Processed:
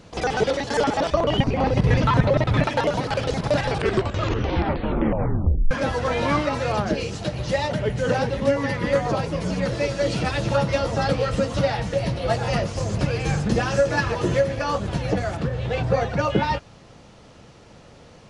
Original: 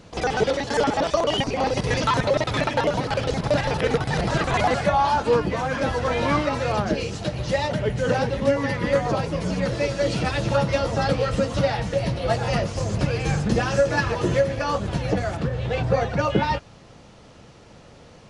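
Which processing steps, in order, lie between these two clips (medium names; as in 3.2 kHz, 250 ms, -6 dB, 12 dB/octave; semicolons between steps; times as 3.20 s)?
1.10–2.64 s: tone controls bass +9 dB, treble -11 dB; 3.60 s: tape stop 2.11 s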